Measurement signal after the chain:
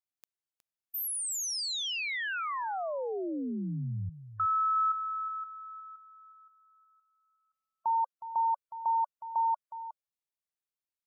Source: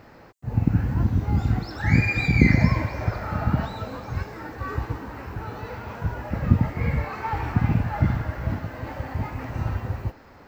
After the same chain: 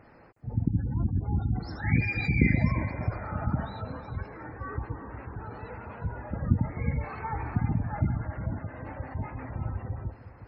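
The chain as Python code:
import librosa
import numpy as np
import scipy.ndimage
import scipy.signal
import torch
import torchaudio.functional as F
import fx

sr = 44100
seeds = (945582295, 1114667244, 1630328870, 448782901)

y = fx.spec_gate(x, sr, threshold_db=-25, keep='strong')
y = y + 10.0 ** (-13.0 / 20.0) * np.pad(y, (int(364 * sr / 1000.0), 0))[:len(y)]
y = F.gain(torch.from_numpy(y), -6.0).numpy()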